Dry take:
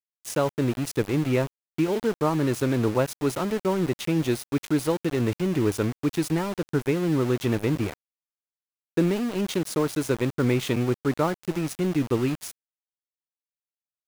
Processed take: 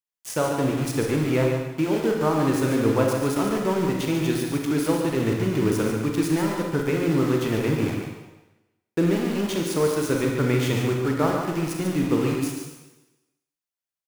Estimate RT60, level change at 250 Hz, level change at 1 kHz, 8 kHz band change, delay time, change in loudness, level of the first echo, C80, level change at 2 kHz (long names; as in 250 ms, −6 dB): 1.1 s, +2.0 dB, +3.0 dB, +3.0 dB, 143 ms, +2.0 dB, −6.5 dB, 3.0 dB, +3.0 dB